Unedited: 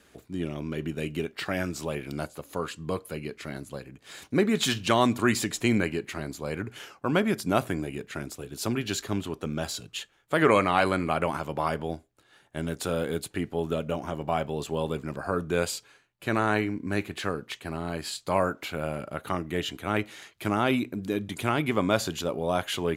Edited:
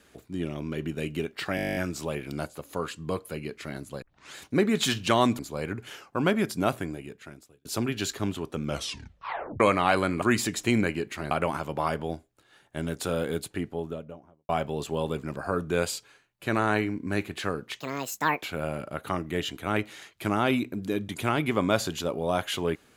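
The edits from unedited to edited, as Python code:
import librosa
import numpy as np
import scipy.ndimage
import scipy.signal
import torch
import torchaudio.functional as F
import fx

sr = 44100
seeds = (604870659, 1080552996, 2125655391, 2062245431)

y = fx.studio_fade_out(x, sr, start_s=13.15, length_s=1.14)
y = fx.edit(y, sr, fx.stutter(start_s=1.56, slice_s=0.02, count=11),
    fx.tape_start(start_s=3.82, length_s=0.33),
    fx.move(start_s=5.19, length_s=1.09, to_s=11.11),
    fx.fade_out_span(start_s=7.4, length_s=1.14),
    fx.tape_stop(start_s=9.53, length_s=0.96),
    fx.speed_span(start_s=17.6, length_s=1.03, speed=1.64), tone=tone)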